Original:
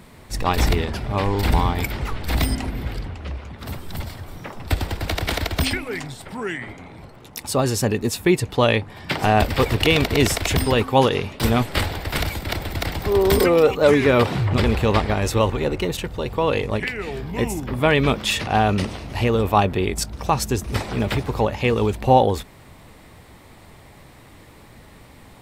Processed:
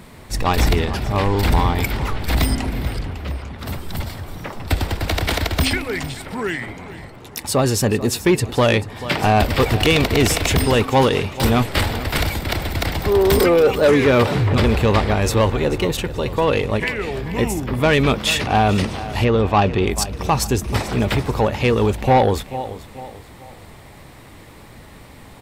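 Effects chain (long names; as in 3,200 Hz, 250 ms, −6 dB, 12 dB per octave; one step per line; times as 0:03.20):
on a send: repeating echo 437 ms, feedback 38%, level −16.5 dB
on the sum: soft clipping −11.5 dBFS, distortion −15 dB
0:19.24–0:19.85: low-pass filter 4,100 Hz → 7,300 Hz 12 dB per octave
level +4 dB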